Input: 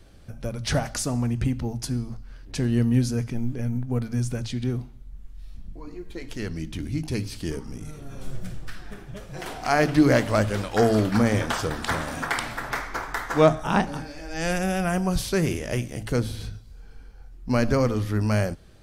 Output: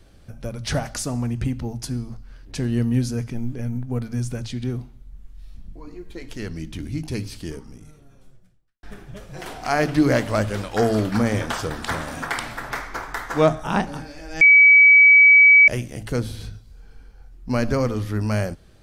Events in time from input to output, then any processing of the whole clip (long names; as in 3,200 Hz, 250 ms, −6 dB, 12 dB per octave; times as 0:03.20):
0:07.29–0:08.83: fade out quadratic
0:14.41–0:15.68: beep over 2,280 Hz −7.5 dBFS